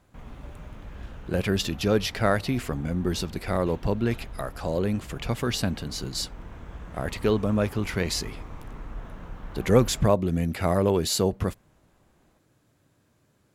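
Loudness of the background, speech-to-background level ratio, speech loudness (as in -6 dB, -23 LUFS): -43.5 LUFS, 17.0 dB, -26.5 LUFS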